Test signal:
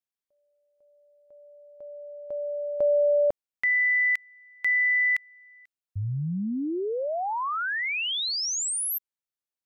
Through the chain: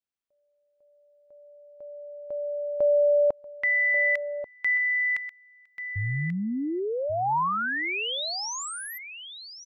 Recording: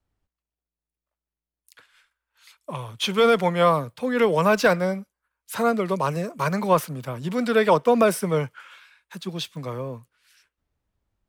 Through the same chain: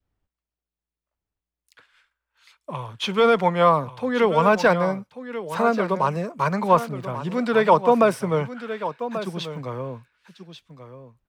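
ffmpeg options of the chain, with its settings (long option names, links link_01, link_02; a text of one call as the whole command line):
ffmpeg -i in.wav -filter_complex "[0:a]equalizer=frequency=14000:width=0.41:gain=-12.5,asplit=2[link_01][link_02];[link_02]aecho=0:1:1137:0.266[link_03];[link_01][link_03]amix=inputs=2:normalize=0,adynamicequalizer=threshold=0.0126:dfrequency=940:dqfactor=2.2:tfrequency=940:tqfactor=2.2:attack=5:release=100:ratio=0.375:range=2.5:mode=boostabove:tftype=bell" out.wav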